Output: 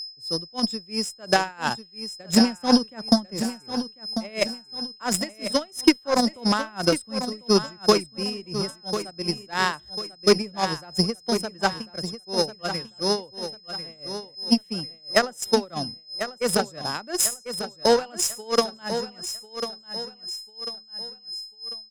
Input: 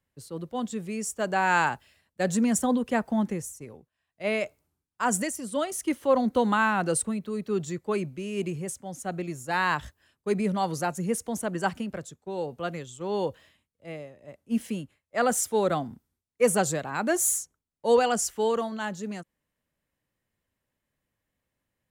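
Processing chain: treble shelf 6.7 kHz -2.5 dB; whistle 5.1 kHz -30 dBFS; peak limiter -17.5 dBFS, peak gain reduction 7.5 dB; tremolo 2.9 Hz, depth 79%; transient shaper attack +9 dB, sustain -4 dB; Chebyshev shaper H 4 -28 dB, 7 -21 dB, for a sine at -9 dBFS; feedback delay 1045 ms, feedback 36%, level -10 dB; trim +7 dB

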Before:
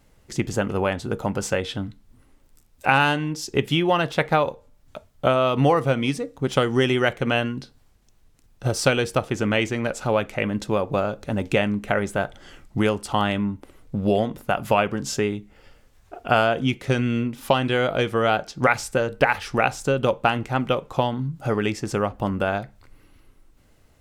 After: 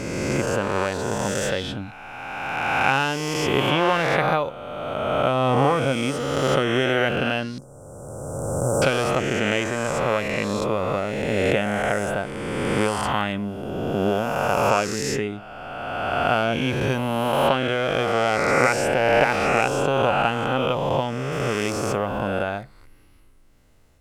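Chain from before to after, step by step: reverse spectral sustain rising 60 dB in 2.44 s; 7.58–8.82 s: elliptic band-stop 1.1–7.5 kHz, stop band 50 dB; 21.32–21.97 s: treble shelf 11 kHz +8.5 dB; trim -4.5 dB

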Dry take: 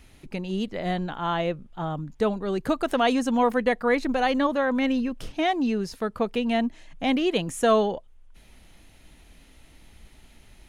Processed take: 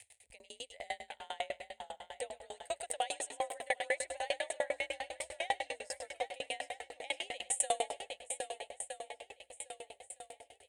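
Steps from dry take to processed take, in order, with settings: gate -41 dBFS, range -14 dB; tilt EQ +3 dB/octave; crackle 37 per s -43 dBFS; on a send: two-band feedback delay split 440 Hz, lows 673 ms, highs 106 ms, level -10.5 dB; on the sum: frequency shift +43 Hz; upward compressor, threshold -39 dBFS; FFT filter 100 Hz 0 dB, 150 Hz -21 dB, 340 Hz -21 dB, 510 Hz +2 dB, 820 Hz 0 dB, 1.2 kHz -23 dB, 1.9 kHz +2 dB, 6 kHz -6 dB, 8.5 kHz +14 dB, 12 kHz -12 dB; shuffle delay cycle 1264 ms, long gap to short 1.5:1, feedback 46%, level -9 dB; sawtooth tremolo in dB decaying 10 Hz, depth 33 dB; trim -4 dB

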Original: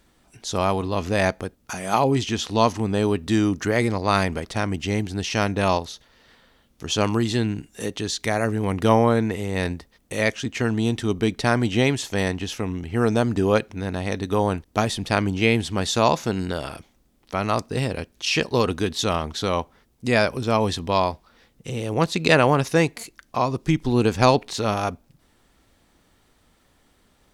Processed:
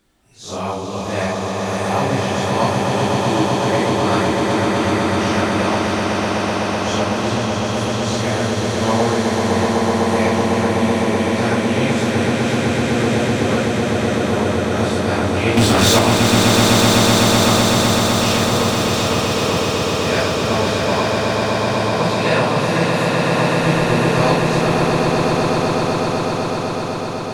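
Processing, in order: phase randomisation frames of 200 ms; 15.57–15.99 s: waveshaping leveller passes 5; on a send: echo with a slow build-up 126 ms, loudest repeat 8, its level -5 dB; on the sum: trim -1.5 dB

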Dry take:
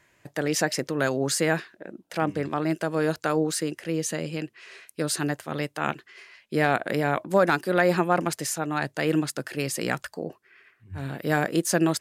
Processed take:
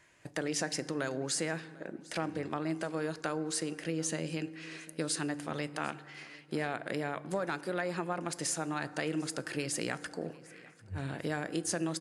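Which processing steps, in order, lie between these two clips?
compression 4:1, threshold -30 dBFS, peak gain reduction 13 dB; treble shelf 2.4 kHz +3 dB; feedback delay 748 ms, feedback 39%, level -22.5 dB; reverberation RT60 1.6 s, pre-delay 3 ms, DRR 14.5 dB; trim -2.5 dB; AAC 96 kbps 24 kHz

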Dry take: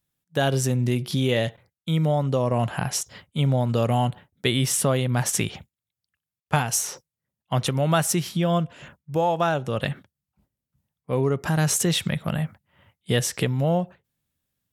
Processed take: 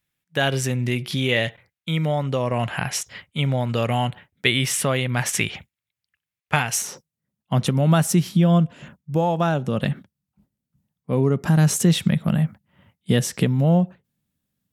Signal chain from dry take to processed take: peaking EQ 2.2 kHz +10 dB 1.2 oct, from 6.82 s 200 Hz; trim -1 dB

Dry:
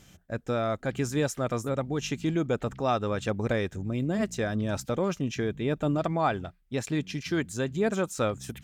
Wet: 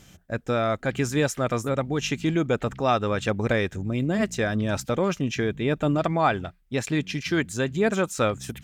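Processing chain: dynamic bell 2.2 kHz, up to +4 dB, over -45 dBFS, Q 0.9; trim +3.5 dB

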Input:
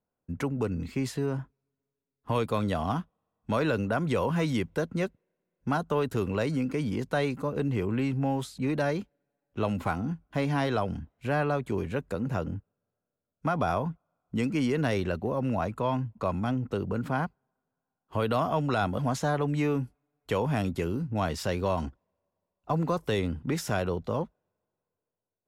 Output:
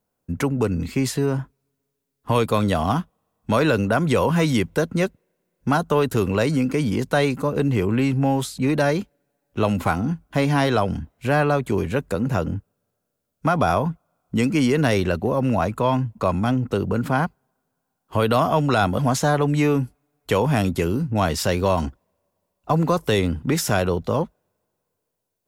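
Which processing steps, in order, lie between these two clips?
treble shelf 5.9 kHz +7 dB; trim +8 dB

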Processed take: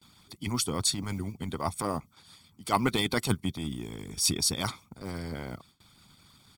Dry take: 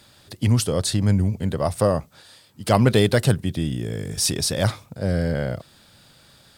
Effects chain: block-companded coder 7-bit; band noise 83–190 Hz -50 dBFS; transient shaper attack -7 dB, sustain -3 dB; comb 0.9 ms, depth 70%; harmonic-percussive split harmonic -16 dB; gate with hold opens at -46 dBFS; bass shelf 130 Hz -5.5 dB; trim -2 dB

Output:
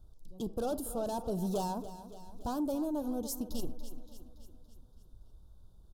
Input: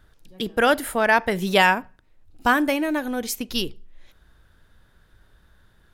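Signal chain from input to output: bass shelf 110 Hz +10.5 dB; saturation -20.5 dBFS, distortion -7 dB; on a send: feedback delay 284 ms, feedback 55%, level -14 dB; on the sum: dynamic bell 3.9 kHz, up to -4 dB, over -42 dBFS, Q 0.86; Butterworth band-stop 2 kHz, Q 0.59; trim -7.5 dB

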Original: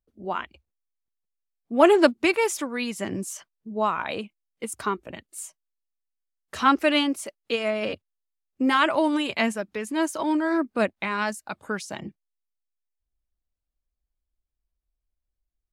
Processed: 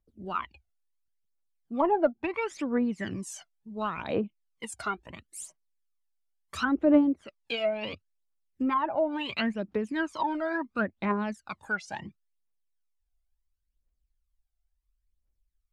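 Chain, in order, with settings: phaser 0.72 Hz, delay 1.5 ms, feedback 74%; low-pass that closes with the level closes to 770 Hz, closed at -15.5 dBFS; trim -5.5 dB

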